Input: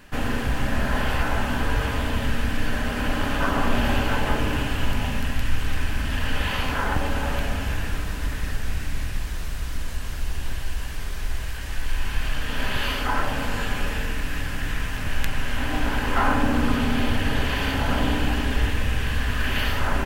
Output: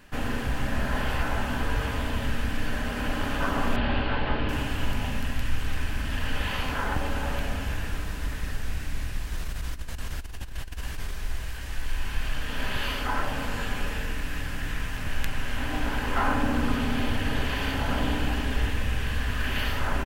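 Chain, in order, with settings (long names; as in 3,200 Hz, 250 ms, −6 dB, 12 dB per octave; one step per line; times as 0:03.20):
0:03.76–0:04.49: Butterworth low-pass 4,500 Hz 48 dB per octave
0:09.32–0:11.11: compressor whose output falls as the input rises −26 dBFS, ratio −0.5
slap from a distant wall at 50 metres, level −20 dB
level −4 dB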